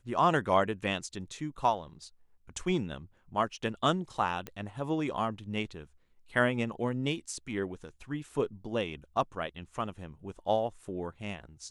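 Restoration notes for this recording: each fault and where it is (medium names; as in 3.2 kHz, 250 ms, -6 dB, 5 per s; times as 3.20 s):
4.47 s: pop -23 dBFS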